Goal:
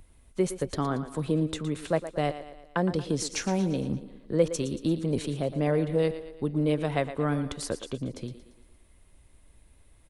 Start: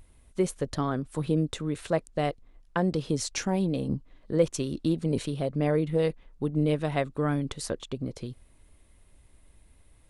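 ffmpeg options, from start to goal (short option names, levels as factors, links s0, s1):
-filter_complex "[0:a]acrossover=split=180[s0][s1];[s0]volume=42.2,asoftclip=hard,volume=0.0237[s2];[s1]aecho=1:1:115|230|345|460|575:0.251|0.126|0.0628|0.0314|0.0157[s3];[s2][s3]amix=inputs=2:normalize=0"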